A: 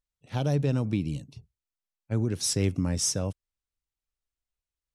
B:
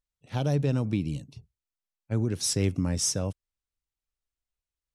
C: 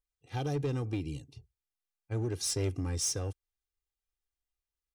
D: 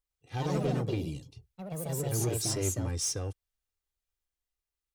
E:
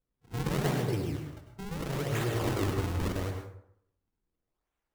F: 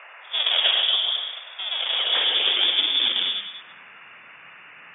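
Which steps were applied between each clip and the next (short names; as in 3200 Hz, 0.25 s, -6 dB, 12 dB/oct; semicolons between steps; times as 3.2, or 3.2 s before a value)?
nothing audible
comb 2.5 ms, depth 79%; in parallel at -8 dB: wavefolder -23.5 dBFS; on the sum: gain -8.5 dB
echoes that change speed 0.111 s, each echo +3 st, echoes 3
in parallel at 0 dB: compressor, threshold -37 dBFS, peak gain reduction 11 dB; on the sum: decimation with a swept rate 42×, swing 160% 0.79 Hz; plate-style reverb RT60 0.7 s, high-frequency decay 0.55×, pre-delay 85 ms, DRR 3.5 dB; gain -4 dB
band noise 610–2400 Hz -54 dBFS; inverted band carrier 3500 Hz; high-pass sweep 610 Hz -> 140 Hz, 1.91–3.97; gain +8 dB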